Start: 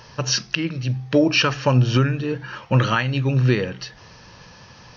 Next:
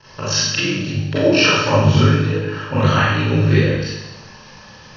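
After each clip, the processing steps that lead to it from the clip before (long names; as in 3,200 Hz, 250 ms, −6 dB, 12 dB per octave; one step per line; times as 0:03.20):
mains-hum notches 50/100/150/200/250/300 Hz
ring modulation 25 Hz
four-comb reverb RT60 1 s, combs from 29 ms, DRR −10 dB
level −2.5 dB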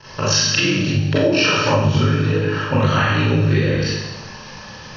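downward compressor, threshold −18 dBFS, peak gain reduction 9.5 dB
level +5 dB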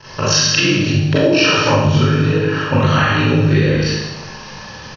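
single-tap delay 72 ms −8.5 dB
level +2.5 dB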